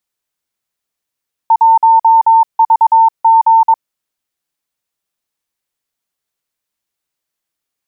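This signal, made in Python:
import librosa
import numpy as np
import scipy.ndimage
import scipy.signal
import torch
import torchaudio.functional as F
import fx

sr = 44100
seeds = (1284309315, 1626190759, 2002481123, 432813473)

y = fx.morse(sr, text='1VG', wpm=22, hz=902.0, level_db=-4.0)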